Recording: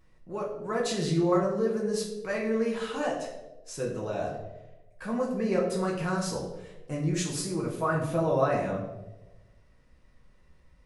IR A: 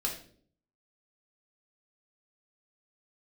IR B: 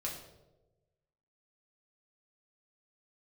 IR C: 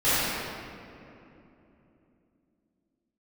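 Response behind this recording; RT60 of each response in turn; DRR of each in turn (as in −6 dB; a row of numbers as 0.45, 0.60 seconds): B; 0.55, 1.1, 3.0 seconds; −2.0, −3.5, −15.5 decibels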